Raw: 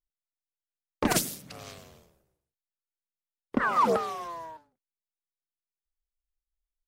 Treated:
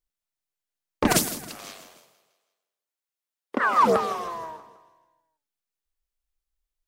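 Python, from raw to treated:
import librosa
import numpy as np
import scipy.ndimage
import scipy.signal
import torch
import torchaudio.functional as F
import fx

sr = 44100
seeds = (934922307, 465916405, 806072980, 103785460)

y = fx.highpass(x, sr, hz=fx.line((1.49, 770.0), (3.79, 320.0)), slope=12, at=(1.49, 3.79), fade=0.02)
y = fx.echo_feedback(y, sr, ms=160, feedback_pct=50, wet_db=-15.5)
y = F.gain(torch.from_numpy(y), 4.5).numpy()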